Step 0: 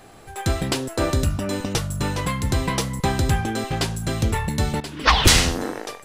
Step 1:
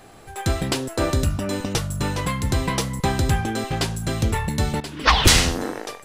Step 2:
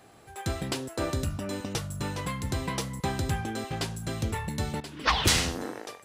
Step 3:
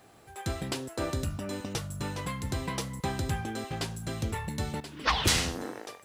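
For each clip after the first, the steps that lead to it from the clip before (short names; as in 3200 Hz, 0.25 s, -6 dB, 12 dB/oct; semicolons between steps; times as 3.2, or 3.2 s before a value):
nothing audible
HPF 61 Hz; gain -8 dB
requantised 12-bit, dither triangular; gain -2 dB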